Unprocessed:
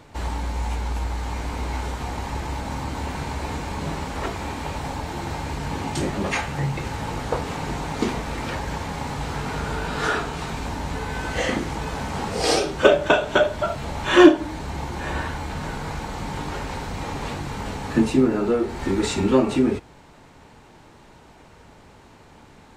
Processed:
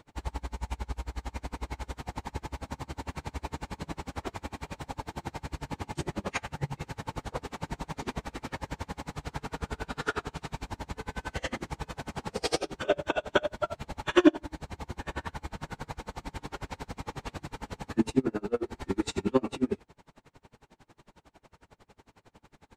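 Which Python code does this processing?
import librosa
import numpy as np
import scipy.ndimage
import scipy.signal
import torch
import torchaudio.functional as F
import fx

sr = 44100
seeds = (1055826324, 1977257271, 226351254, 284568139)

y = x * 10.0 ** (-33 * (0.5 - 0.5 * np.cos(2.0 * np.pi * 11.0 * np.arange(len(x)) / sr)) / 20.0)
y = y * 10.0 ** (-3.5 / 20.0)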